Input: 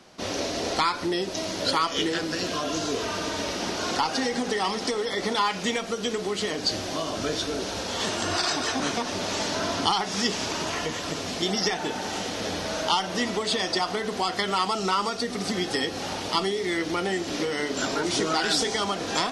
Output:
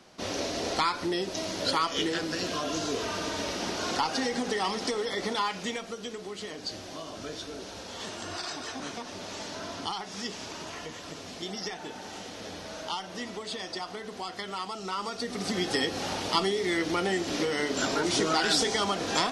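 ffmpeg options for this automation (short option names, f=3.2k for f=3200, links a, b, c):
-af "volume=6.5dB,afade=t=out:st=5.04:d=1.08:silence=0.421697,afade=t=in:st=14.85:d=0.88:silence=0.334965"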